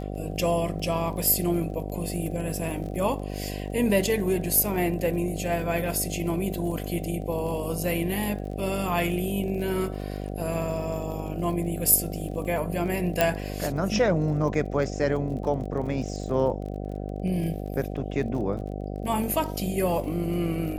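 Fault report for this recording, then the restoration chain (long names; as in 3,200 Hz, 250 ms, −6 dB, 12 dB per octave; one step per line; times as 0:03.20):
mains buzz 50 Hz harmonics 15 −33 dBFS
surface crackle 34 per second −36 dBFS
0:13.21: click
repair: click removal
hum removal 50 Hz, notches 15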